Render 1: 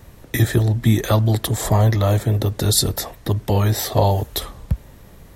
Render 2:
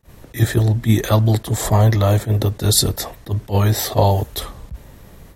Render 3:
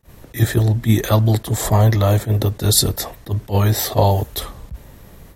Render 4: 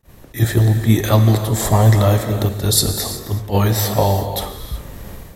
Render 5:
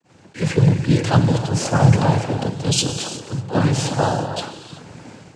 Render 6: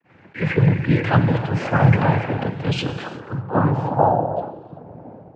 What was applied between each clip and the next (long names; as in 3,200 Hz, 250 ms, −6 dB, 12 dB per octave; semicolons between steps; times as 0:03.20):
noise gate with hold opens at −34 dBFS; level that may rise only so fast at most 320 dB per second; level +2 dB
parametric band 14,000 Hz +3.5 dB 0.45 octaves
automatic gain control gain up to 10 dB; reverb whose tail is shaped and stops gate 400 ms flat, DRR 6.5 dB; level −1 dB
cochlear-implant simulation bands 8; level −1.5 dB
low-pass filter sweep 2,100 Hz → 690 Hz, 0:02.80–0:04.31; level −1.5 dB